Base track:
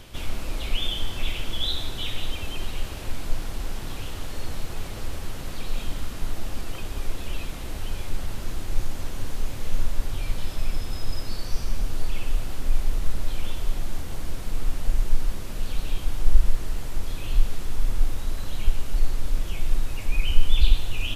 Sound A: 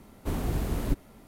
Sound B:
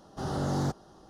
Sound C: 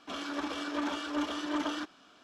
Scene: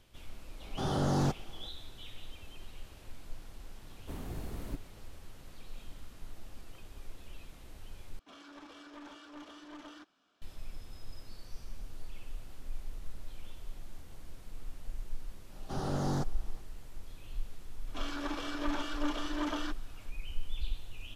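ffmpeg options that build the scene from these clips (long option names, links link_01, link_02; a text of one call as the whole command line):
ffmpeg -i bed.wav -i cue0.wav -i cue1.wav -i cue2.wav -filter_complex "[2:a]asplit=2[link_01][link_02];[3:a]asplit=2[link_03][link_04];[0:a]volume=-18dB[link_05];[link_03]aeval=exprs='clip(val(0),-1,0.0224)':channel_layout=same[link_06];[link_05]asplit=2[link_07][link_08];[link_07]atrim=end=8.194[link_09];[link_06]atrim=end=2.23,asetpts=PTS-STARTPTS,volume=-15dB[link_10];[link_08]atrim=start=10.416[link_11];[link_01]atrim=end=1.09,asetpts=PTS-STARTPTS,afade=type=in:duration=0.004:curve=hsin,afade=type=out:start_time=1.086:duration=0.004:curve=hsin,adelay=600[link_12];[1:a]atrim=end=1.27,asetpts=PTS-STARTPTS,volume=-12dB,afade=type=in:duration=0.004:curve=hsin,afade=type=out:start_time=1.266:duration=0.004:curve=hsin,adelay=3820[link_13];[link_02]atrim=end=1.09,asetpts=PTS-STARTPTS,volume=-3.5dB,afade=type=in:duration=0.004:curve=hsin,afade=type=out:start_time=1.086:duration=0.004:curve=hsin,adelay=15520[link_14];[link_04]atrim=end=2.23,asetpts=PTS-STARTPTS,volume=-2.5dB,afade=type=in:duration=0.004:curve=hsin,afade=type=out:start_time=2.226:duration=0.004:curve=hsin,adelay=17870[link_15];[link_09][link_10]acrossfade=duration=0.004:curve1=hsin:curve2=hsin[link_16];[link_16][link_11]acrossfade=duration=0.004:curve1=hsin:curve2=hsin[link_17];[link_17][link_12][link_13][link_14][link_15]amix=inputs=5:normalize=0" out.wav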